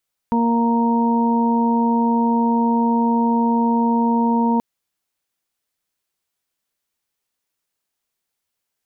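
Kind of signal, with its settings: steady additive tone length 4.28 s, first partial 233 Hz, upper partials -10/-15.5/-4 dB, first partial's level -16 dB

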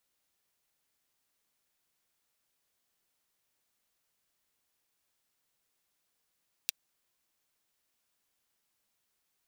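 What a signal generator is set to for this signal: closed hi-hat, high-pass 3000 Hz, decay 0.02 s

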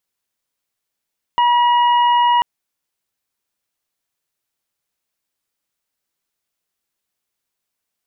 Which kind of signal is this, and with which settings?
steady additive tone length 1.04 s, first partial 963 Hz, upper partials -16.5/-13 dB, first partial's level -11 dB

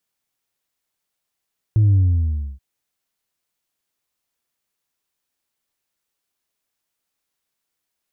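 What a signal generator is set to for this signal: sub drop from 110 Hz, over 0.83 s, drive 1.5 dB, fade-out 0.65 s, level -11.5 dB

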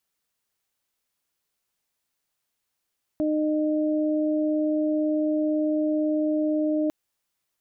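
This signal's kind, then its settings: steady additive tone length 3.70 s, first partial 306 Hz, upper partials -5 dB, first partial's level -22 dB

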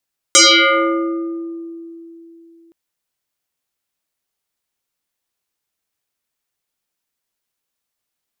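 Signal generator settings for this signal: FM tone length 2.37 s, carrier 333 Hz, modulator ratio 2.64, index 9.5, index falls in 1.68 s exponential, decay 3.39 s, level -4.5 dB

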